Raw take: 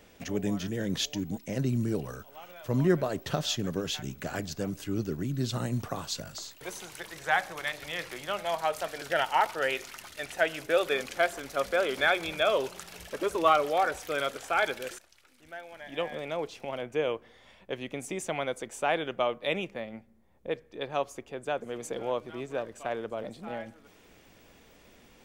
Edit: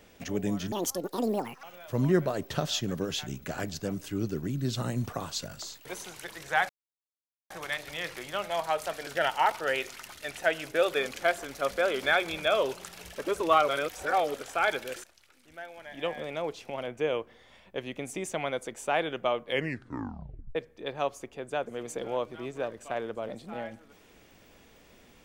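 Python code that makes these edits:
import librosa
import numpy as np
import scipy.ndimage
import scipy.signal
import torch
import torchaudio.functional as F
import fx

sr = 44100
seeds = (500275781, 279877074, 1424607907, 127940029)

y = fx.edit(x, sr, fx.speed_span(start_s=0.72, length_s=1.67, speed=1.83),
    fx.insert_silence(at_s=7.45, length_s=0.81),
    fx.reverse_span(start_s=13.63, length_s=0.66),
    fx.tape_stop(start_s=19.37, length_s=1.13), tone=tone)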